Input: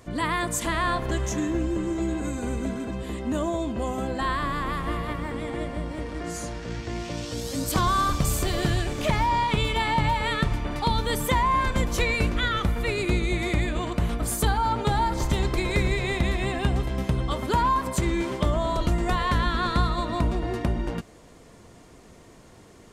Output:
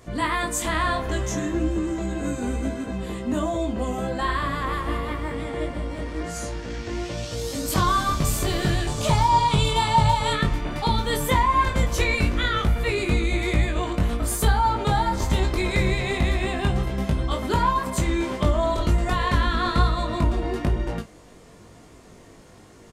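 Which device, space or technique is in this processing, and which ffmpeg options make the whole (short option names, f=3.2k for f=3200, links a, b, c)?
double-tracked vocal: -filter_complex "[0:a]asettb=1/sr,asplit=3[a][b][c];[a]atrim=end=8.874[d];[b]atrim=start=8.87:end=10.33,asetpts=PTS-STARTPTS,afade=t=in:d=0.004:c=qsin,afade=t=out:st=1.456:d=0.004:c=qsin,equalizer=f=125:t=o:w=1:g=7,equalizer=f=250:t=o:w=1:g=-5,equalizer=f=1k:t=o:w=1:g=5,equalizer=f=2k:t=o:w=1:g=-8,equalizer=f=4k:t=o:w=1:g=4,equalizer=f=8k:t=o:w=1:g=8[e];[c]atrim=start=10.326[f];[d][e]acrossfade=d=0.004:c1=hsin:c2=qsin[g];[g][f]acrossfade=d=0.004:c1=qsin:c2=hsin,asplit=2[h][i];[i]adelay=32,volume=-12dB[j];[h][j]amix=inputs=2:normalize=0,flanger=delay=18.5:depth=2.7:speed=1.1,volume=4.5dB"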